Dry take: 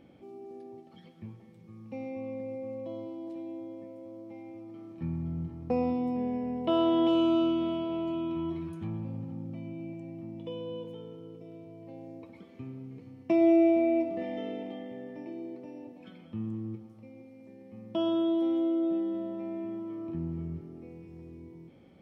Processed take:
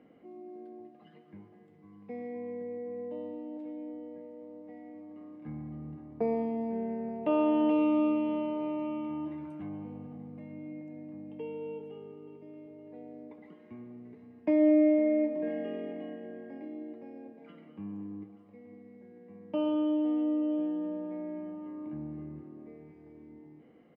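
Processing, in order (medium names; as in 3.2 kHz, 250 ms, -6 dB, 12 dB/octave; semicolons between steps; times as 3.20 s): three-band isolator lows -16 dB, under 220 Hz, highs -15 dB, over 2.7 kHz; on a send: delay 808 ms -18.5 dB; on the sum: speed mistake 48 kHz file played as 44.1 kHz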